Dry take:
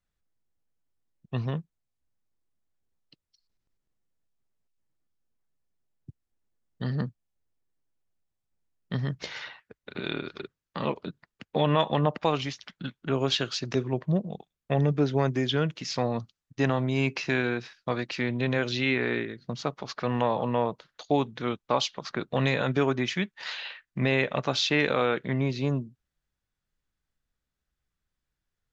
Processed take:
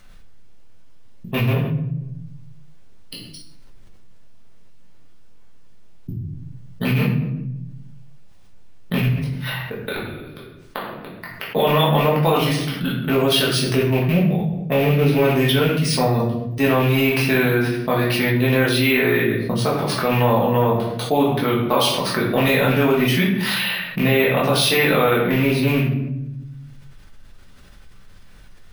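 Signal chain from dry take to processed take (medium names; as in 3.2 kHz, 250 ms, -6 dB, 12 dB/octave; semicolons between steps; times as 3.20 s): rattle on loud lows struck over -26 dBFS, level -24 dBFS; 9.05–11.52 s: inverted gate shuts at -27 dBFS, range -35 dB; careless resampling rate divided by 3×, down filtered, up hold; reverberation RT60 0.70 s, pre-delay 5 ms, DRR -5.5 dB; level flattener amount 50%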